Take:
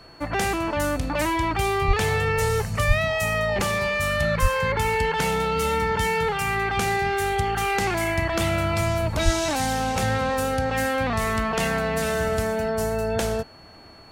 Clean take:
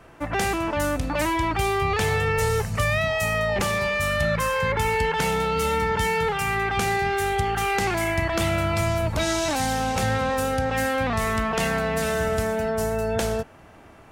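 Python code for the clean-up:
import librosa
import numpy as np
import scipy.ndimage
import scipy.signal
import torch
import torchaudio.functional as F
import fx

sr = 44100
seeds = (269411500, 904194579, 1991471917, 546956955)

y = fx.notch(x, sr, hz=4400.0, q=30.0)
y = fx.fix_deplosive(y, sr, at_s=(1.87, 2.87, 4.41, 9.24))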